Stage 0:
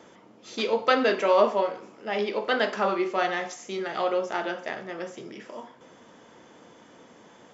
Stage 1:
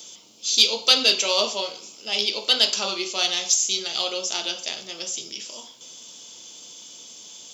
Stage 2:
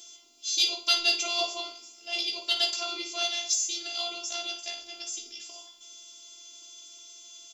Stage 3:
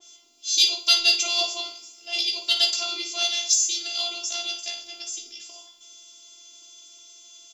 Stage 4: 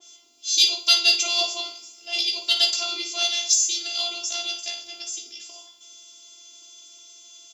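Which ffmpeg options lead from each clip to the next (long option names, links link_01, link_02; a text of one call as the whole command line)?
ffmpeg -i in.wav -af "aexciter=amount=14:drive=8.6:freq=2900,volume=-6dB" out.wav
ffmpeg -i in.wav -af "afftfilt=real='hypot(re,im)*cos(PI*b)':imag='0':win_size=512:overlap=0.75,aecho=1:1:16|56:0.596|0.266,volume=-5dB" out.wav
ffmpeg -i in.wav -af "adynamicequalizer=threshold=0.0112:dfrequency=2500:dqfactor=0.7:tfrequency=2500:tqfactor=0.7:attack=5:release=100:ratio=0.375:range=3.5:mode=boostabove:tftype=highshelf" out.wav
ffmpeg -i in.wav -af "highpass=51,volume=1dB" out.wav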